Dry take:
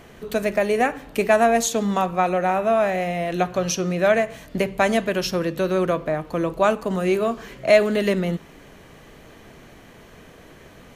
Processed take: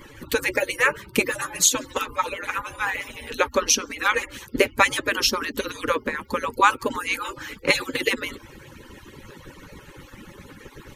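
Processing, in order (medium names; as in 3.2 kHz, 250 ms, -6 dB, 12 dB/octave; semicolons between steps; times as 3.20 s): harmonic-percussive separation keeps percussive; Butterworth band-stop 690 Hz, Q 2.6; trim +7.5 dB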